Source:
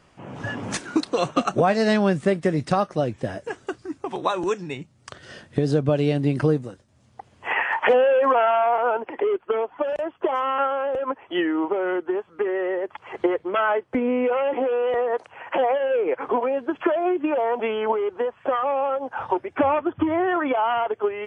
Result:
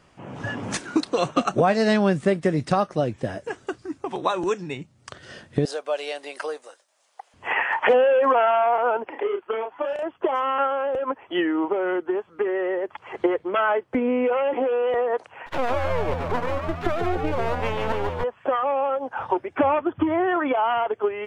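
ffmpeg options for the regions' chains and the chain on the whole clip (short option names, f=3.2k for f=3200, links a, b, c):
-filter_complex "[0:a]asettb=1/sr,asplit=3[a][b][c];[a]atrim=end=5.654[d];[b]atrim=start=5.65:end=7.34,asetpts=PTS-STARTPTS,afade=t=in:d=0.004:c=qsin,afade=t=out:st=1.686:d=0.004:c=qsin,highpass=f=580:w=0.5412,highpass=f=580:w=1.3066,highshelf=f=6.2k:g=7.5[e];[c]atrim=start=7.336[f];[d][e]acrossfade=d=0.004:c1=hsin:c2=qsin[g];[g][f]acrossfade=d=0.004:c1=qsin:c2=hsin,asettb=1/sr,asplit=3[h][i][j];[h]atrim=end=9.094[k];[i]atrim=start=9.09:end=10.03,asetpts=PTS-STARTPTS,afade=t=in:d=0.004:c=qsin,afade=t=out:st=0.936:d=0.004:c=qsin,lowshelf=f=440:g=-8.5,asplit=2[l][m];[m]adelay=32,volume=-5dB[n];[l][n]amix=inputs=2:normalize=0,atrim=end_sample=41454[o];[j]atrim=start=10.026[p];[k][o]acrossfade=d=0.004:c1=hsin:c2=qsin[q];[q][p]acrossfade=d=0.004:c1=qsin:c2=hsin,asettb=1/sr,asplit=3[r][s][t];[r]atrim=end=15.464[u];[s]atrim=start=15.46:end=18.24,asetpts=PTS-STARTPTS,afade=t=in:d=0.004:c=qsin,afade=t=out:st=2.776:d=0.004:c=qsin,aeval=exprs='max(val(0),0)':c=same,asplit=7[v][w][x][y][z][aa][ab];[w]adelay=145,afreqshift=83,volume=-5dB[ac];[x]adelay=290,afreqshift=166,volume=-10.8dB[ad];[y]adelay=435,afreqshift=249,volume=-16.7dB[ae];[z]adelay=580,afreqshift=332,volume=-22.5dB[af];[aa]adelay=725,afreqshift=415,volume=-28.4dB[ag];[ab]adelay=870,afreqshift=498,volume=-34.2dB[ah];[v][ac][ad][ae][af][ag][ah]amix=inputs=7:normalize=0,atrim=end_sample=122598[ai];[t]atrim=start=18.236[aj];[u][ai]acrossfade=d=0.004:c1=hsin:c2=qsin[ak];[ak][aj]acrossfade=d=0.004:c1=qsin:c2=hsin"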